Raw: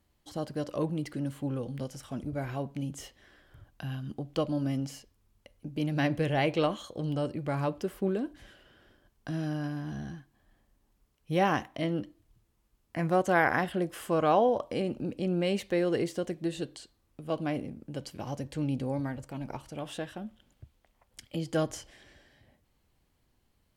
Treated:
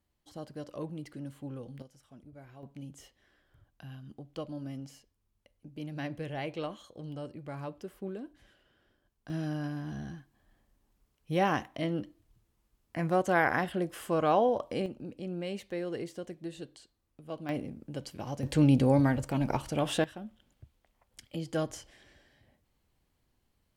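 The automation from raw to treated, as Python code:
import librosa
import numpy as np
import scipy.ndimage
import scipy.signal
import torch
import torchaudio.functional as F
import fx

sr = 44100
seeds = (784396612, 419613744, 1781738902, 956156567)

y = fx.gain(x, sr, db=fx.steps((0.0, -8.0), (1.82, -17.0), (2.63, -9.5), (9.3, -1.5), (14.86, -8.0), (17.49, -1.0), (18.43, 8.5), (20.04, -3.0)))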